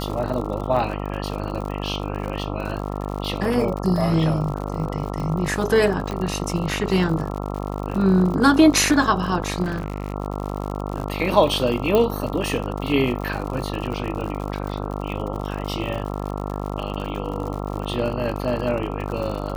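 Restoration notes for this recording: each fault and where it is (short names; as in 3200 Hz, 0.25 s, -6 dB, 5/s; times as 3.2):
buzz 50 Hz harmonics 27 -28 dBFS
crackle 80/s -29 dBFS
6.11 pop -15 dBFS
9.62–10.14 clipped -20.5 dBFS
11.95 pop -8 dBFS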